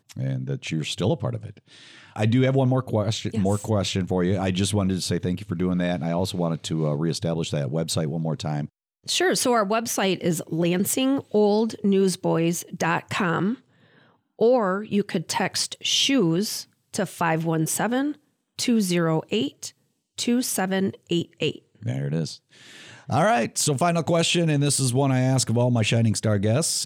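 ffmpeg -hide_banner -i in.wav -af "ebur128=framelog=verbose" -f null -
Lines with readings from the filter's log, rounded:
Integrated loudness:
  I:         -23.6 LUFS
  Threshold: -34.0 LUFS
Loudness range:
  LRA:         3.8 LU
  Threshold: -44.1 LUFS
  LRA low:   -25.8 LUFS
  LRA high:  -22.0 LUFS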